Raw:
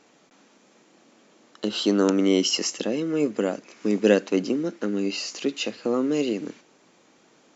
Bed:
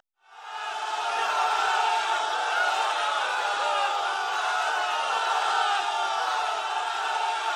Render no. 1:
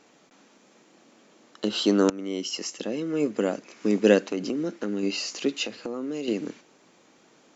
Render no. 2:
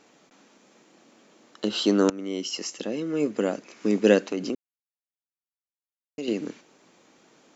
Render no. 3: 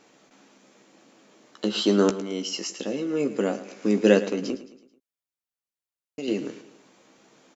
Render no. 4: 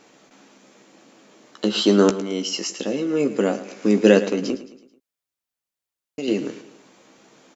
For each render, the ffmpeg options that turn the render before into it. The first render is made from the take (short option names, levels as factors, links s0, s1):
-filter_complex "[0:a]asettb=1/sr,asplit=3[s0][s1][s2];[s0]atrim=end=4.274[s3];[s1]atrim=start=4.27:end=5.03,asetpts=PTS-STARTPTS,afade=t=in:d=0.004:c=qsin,afade=t=out:st=0.756:d=0.004:c=qsin,acompressor=threshold=0.0631:ratio=4:attack=3.2:release=140:knee=1:detection=peak[s4];[s2]atrim=start=5.026[s5];[s3][s4]acrossfade=d=0.004:c1=hsin:c2=qsin[s6];[s6][s5]acrossfade=d=0.004:c1=qsin:c2=hsin,asettb=1/sr,asplit=3[s7][s8][s9];[s7]atrim=end=5.634[s10];[s8]atrim=start=5.63:end=6.28,asetpts=PTS-STARTPTS,afade=t=in:d=0.004:c=qsin,afade=t=out:st=0.646:d=0.004:c=qsin,acompressor=threshold=0.0398:ratio=6:attack=3.2:release=140:knee=1:detection=peak[s11];[s9]atrim=start=6.276[s12];[s10][s11]acrossfade=d=0.004:c1=hsin:c2=qsin[s13];[s13][s12]acrossfade=d=0.004:c1=qsin:c2=hsin,asplit=2[s14][s15];[s14]atrim=end=2.1,asetpts=PTS-STARTPTS,afade=t=out:st=2.096:d=0.004:c=hsin:silence=0.149624[s16];[s15]atrim=start=2.1,asetpts=PTS-STARTPTS,afade=t=in:d=1.46:silence=0.149624[s17];[s16][s17]concat=n=2:v=0:a=1"
-filter_complex "[0:a]asplit=3[s0][s1][s2];[s0]atrim=end=4.55,asetpts=PTS-STARTPTS,afade=t=out:st=4.546:d=0.004:c=hsin[s3];[s1]atrim=start=4.55:end=6.18,asetpts=PTS-STARTPTS,volume=0[s4];[s2]atrim=start=6.18,asetpts=PTS-STARTPTS,afade=t=in:d=0.004:c=hsin[s5];[s3][s4][s5]concat=n=3:v=0:a=1"
-filter_complex "[0:a]asplit=2[s0][s1];[s1]adelay=15,volume=0.398[s2];[s0][s2]amix=inputs=2:normalize=0,aecho=1:1:109|218|327|436:0.188|0.0885|0.0416|0.0196"
-af "volume=1.68,alimiter=limit=0.891:level=0:latency=1"